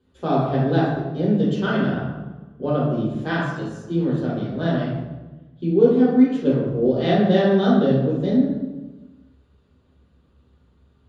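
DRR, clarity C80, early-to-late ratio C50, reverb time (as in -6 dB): -7.5 dB, 3.5 dB, 1.0 dB, 1.2 s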